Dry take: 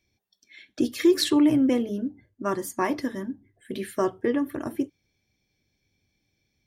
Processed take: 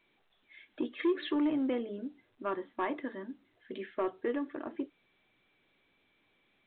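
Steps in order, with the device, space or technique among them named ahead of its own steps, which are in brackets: telephone (BPF 310–3300 Hz; soft clip -16.5 dBFS, distortion -18 dB; gain -5.5 dB; A-law 64 kbps 8000 Hz)

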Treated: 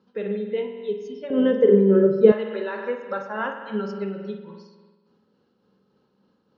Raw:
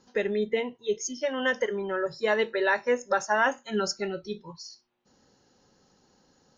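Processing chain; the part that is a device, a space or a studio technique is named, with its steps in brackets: combo amplifier with spring reverb and tremolo (spring tank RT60 1.4 s, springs 46 ms, chirp 20 ms, DRR 3.5 dB; tremolo 3.5 Hz, depth 33%; speaker cabinet 89–3800 Hz, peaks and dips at 200 Hz +10 dB, 440 Hz +6 dB, 750 Hz -5 dB, 1200 Hz +5 dB, 1900 Hz -7 dB); 1.3–2.32 resonant low shelf 600 Hz +13.5 dB, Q 1.5; gain -4.5 dB

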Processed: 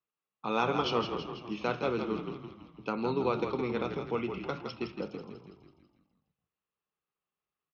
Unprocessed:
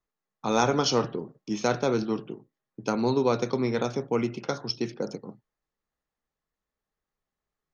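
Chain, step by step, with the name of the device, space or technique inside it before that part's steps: frequency-shifting delay pedal into a guitar cabinet (frequency-shifting echo 0.164 s, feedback 56%, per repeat -42 Hz, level -7 dB; speaker cabinet 94–3900 Hz, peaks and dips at 99 Hz -7 dB, 250 Hz -3 dB, 650 Hz -3 dB, 1200 Hz +5 dB, 1800 Hz -4 dB, 2700 Hz +9 dB); gain -6 dB

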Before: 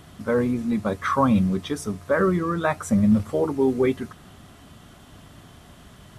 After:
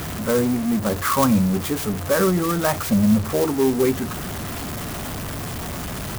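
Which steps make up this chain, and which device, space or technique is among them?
early CD player with a faulty converter (zero-crossing step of -24 dBFS; clock jitter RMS 0.066 ms)

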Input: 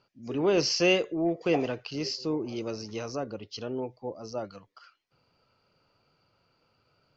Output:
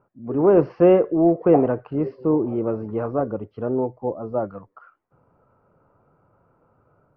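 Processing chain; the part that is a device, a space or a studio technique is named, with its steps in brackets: action camera in a waterproof case (LPF 1300 Hz 24 dB/oct; AGC gain up to 3.5 dB; gain +7 dB; AAC 48 kbps 44100 Hz)

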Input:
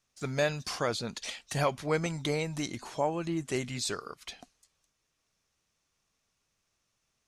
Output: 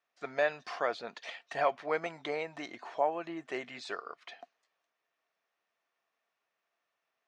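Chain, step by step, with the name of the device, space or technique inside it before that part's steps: tin-can telephone (BPF 490–2400 Hz; small resonant body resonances 690/1800 Hz, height 8 dB)

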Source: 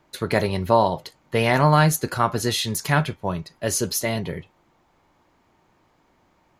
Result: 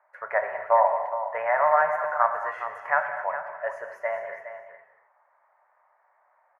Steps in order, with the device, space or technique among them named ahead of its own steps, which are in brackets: elliptic band-pass 600–1900 Hz, stop band 40 dB; 1.42–1.9 air absorption 220 m; low shelf boost with a cut just above (low shelf 74 Hz +6 dB; bell 200 Hz -2.5 dB 1.1 oct); echo 0.414 s -11 dB; non-linear reverb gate 0.29 s flat, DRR 6.5 dB

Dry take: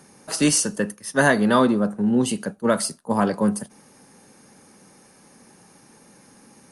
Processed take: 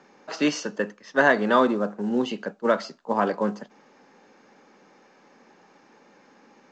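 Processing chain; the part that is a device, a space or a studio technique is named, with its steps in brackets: telephone (BPF 310–3200 Hz; µ-law 128 kbps 16000 Hz)

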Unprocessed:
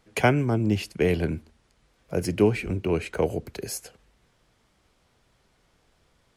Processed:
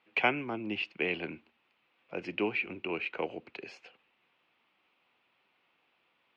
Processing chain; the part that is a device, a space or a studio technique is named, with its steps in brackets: phone earpiece (speaker cabinet 390–3400 Hz, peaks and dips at 440 Hz -7 dB, 620 Hz -6 dB, 1600 Hz -4 dB, 2600 Hz +9 dB); gain -3.5 dB

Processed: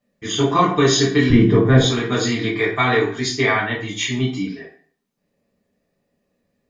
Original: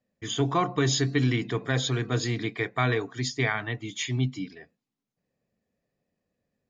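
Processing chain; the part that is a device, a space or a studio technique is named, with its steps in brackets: 1.3–1.81 tilt -4 dB/oct; bathroom (reverb RT60 0.50 s, pre-delay 4 ms, DRR -5.5 dB); gain +3.5 dB

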